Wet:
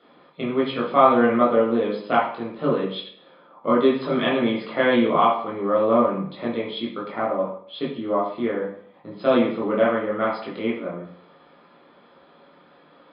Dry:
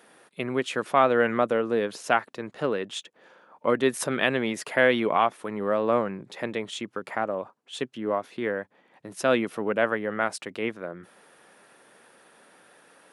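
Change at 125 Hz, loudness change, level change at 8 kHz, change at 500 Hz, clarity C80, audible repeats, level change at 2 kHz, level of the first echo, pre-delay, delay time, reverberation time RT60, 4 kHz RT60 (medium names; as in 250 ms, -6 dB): +4.0 dB, +4.5 dB, under -40 dB, +4.5 dB, 8.0 dB, no echo, -1.5 dB, no echo, 17 ms, no echo, 0.60 s, 0.65 s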